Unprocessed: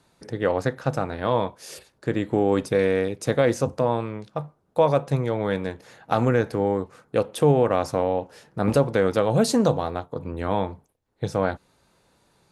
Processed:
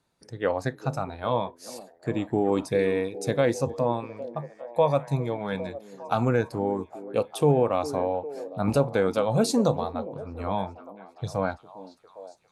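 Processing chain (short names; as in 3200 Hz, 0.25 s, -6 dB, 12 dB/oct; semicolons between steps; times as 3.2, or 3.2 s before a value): spectral noise reduction 9 dB; delay with a stepping band-pass 0.404 s, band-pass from 320 Hz, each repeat 0.7 oct, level -10.5 dB; gain -2.5 dB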